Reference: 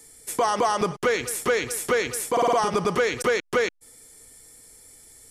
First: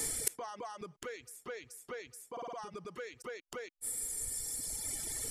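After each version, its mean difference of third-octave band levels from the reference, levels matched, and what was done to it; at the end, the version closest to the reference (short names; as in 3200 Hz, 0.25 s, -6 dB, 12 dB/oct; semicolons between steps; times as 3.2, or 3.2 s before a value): 13.5 dB: reverb removal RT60 1.8 s; flipped gate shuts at -30 dBFS, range -35 dB; gain +14.5 dB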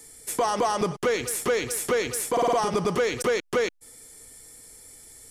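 2.0 dB: dynamic EQ 1600 Hz, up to -4 dB, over -34 dBFS, Q 0.91; in parallel at -5 dB: soft clip -30 dBFS, distortion -6 dB; on the sum: gain -2 dB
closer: second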